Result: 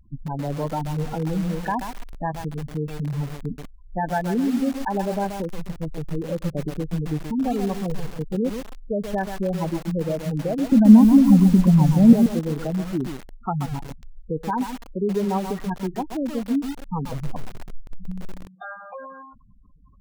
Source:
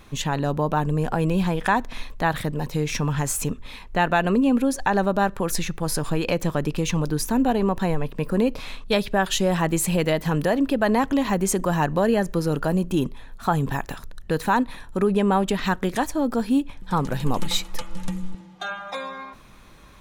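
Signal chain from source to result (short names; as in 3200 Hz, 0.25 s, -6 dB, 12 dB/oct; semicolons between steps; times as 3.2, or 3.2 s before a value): air absorption 400 m; spectral gate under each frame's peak -10 dB strong; 10.72–12.13 resonant low shelf 310 Hz +9.5 dB, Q 3; lo-fi delay 0.132 s, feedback 35%, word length 5-bit, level -6 dB; gain -2 dB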